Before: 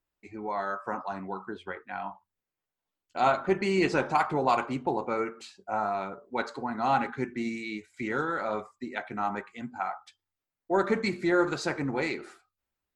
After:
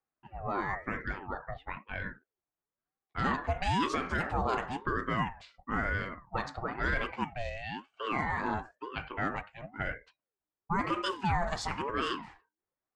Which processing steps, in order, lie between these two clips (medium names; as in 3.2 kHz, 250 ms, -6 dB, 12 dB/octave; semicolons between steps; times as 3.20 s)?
resonant low shelf 270 Hz -6 dB, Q 1.5; level-controlled noise filter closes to 1.2 kHz, open at -25 dBFS; peak limiter -19.5 dBFS, peak gain reduction 8.5 dB; ring modulator with a swept carrier 550 Hz, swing 45%, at 1 Hz; trim +1 dB